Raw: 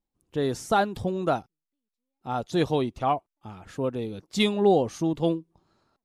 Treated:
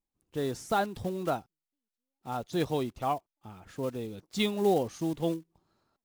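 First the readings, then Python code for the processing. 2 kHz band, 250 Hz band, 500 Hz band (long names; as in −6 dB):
−5.5 dB, −5.5 dB, −5.5 dB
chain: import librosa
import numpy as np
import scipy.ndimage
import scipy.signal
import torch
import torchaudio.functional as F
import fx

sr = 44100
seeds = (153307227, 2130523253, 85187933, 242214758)

y = fx.block_float(x, sr, bits=5)
y = y * librosa.db_to_amplitude(-5.5)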